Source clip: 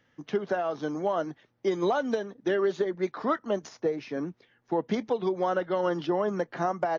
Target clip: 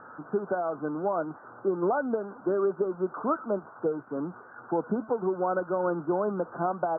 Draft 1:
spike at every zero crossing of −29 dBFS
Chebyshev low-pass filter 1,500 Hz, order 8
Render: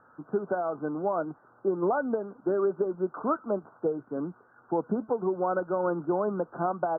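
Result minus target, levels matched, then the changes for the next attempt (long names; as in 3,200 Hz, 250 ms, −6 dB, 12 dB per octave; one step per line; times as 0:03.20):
spike at every zero crossing: distortion −12 dB
change: spike at every zero crossing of −17 dBFS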